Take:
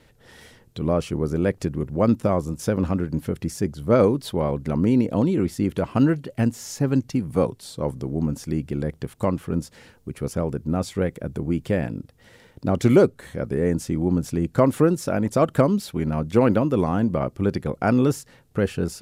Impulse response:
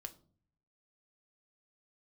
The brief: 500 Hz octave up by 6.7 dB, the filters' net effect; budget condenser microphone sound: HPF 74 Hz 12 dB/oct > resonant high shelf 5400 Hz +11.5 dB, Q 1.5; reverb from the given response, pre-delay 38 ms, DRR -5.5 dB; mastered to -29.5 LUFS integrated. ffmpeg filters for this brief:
-filter_complex "[0:a]equalizer=f=500:t=o:g=8,asplit=2[a][b];[1:a]atrim=start_sample=2205,adelay=38[c];[b][c]afir=irnorm=-1:irlink=0,volume=10dB[d];[a][d]amix=inputs=2:normalize=0,highpass=74,highshelf=f=5.4k:t=q:w=1.5:g=11.5,volume=-17dB"

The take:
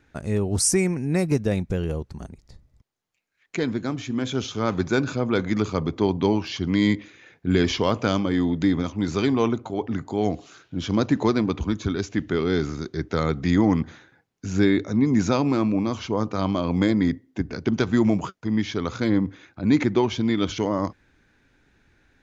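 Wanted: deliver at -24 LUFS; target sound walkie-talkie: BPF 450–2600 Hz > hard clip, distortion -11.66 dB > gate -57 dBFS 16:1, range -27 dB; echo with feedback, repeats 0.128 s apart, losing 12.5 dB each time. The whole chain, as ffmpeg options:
-af "highpass=450,lowpass=2.6k,aecho=1:1:128|256|384:0.237|0.0569|0.0137,asoftclip=type=hard:threshold=-23dB,agate=range=-27dB:threshold=-57dB:ratio=16,volume=8dB"

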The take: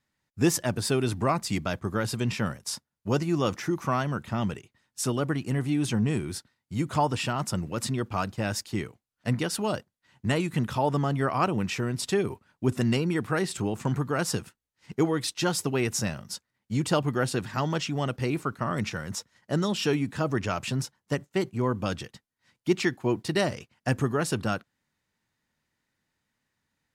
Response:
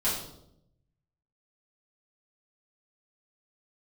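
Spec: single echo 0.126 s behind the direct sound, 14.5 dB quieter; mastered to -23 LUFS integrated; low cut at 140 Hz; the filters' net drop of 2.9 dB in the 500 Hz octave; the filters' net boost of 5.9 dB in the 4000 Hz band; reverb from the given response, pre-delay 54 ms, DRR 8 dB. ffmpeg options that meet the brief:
-filter_complex "[0:a]highpass=140,equalizer=f=500:t=o:g=-4,equalizer=f=4k:t=o:g=8,aecho=1:1:126:0.188,asplit=2[a][b];[1:a]atrim=start_sample=2205,adelay=54[c];[b][c]afir=irnorm=-1:irlink=0,volume=-17dB[d];[a][d]amix=inputs=2:normalize=0,volume=5dB"

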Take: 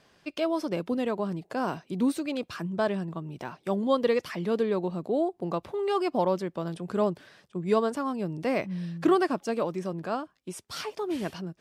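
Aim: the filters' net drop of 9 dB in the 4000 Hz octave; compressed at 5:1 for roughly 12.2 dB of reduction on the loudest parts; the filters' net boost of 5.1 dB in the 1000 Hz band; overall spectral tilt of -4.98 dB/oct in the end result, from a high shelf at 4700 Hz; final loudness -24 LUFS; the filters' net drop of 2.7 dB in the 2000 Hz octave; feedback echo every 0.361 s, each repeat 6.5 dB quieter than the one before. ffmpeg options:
-af "equalizer=f=1k:t=o:g=8,equalizer=f=2k:t=o:g=-4,equalizer=f=4k:t=o:g=-9,highshelf=f=4.7k:g=-5,acompressor=threshold=-31dB:ratio=5,aecho=1:1:361|722|1083|1444|1805|2166:0.473|0.222|0.105|0.0491|0.0231|0.0109,volume=11dB"

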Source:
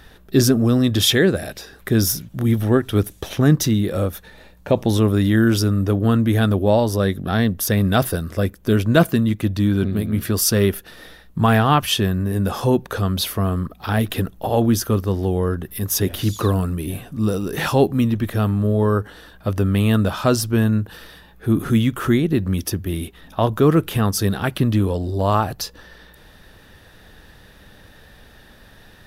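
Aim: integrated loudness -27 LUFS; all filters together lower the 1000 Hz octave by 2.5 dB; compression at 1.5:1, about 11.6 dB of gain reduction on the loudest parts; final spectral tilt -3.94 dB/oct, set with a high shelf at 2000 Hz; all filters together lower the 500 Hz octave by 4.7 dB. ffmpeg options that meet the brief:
-af "equalizer=f=500:t=o:g=-6,equalizer=f=1k:t=o:g=-4,highshelf=f=2k:g=9,acompressor=threshold=-40dB:ratio=1.5,volume=1dB"

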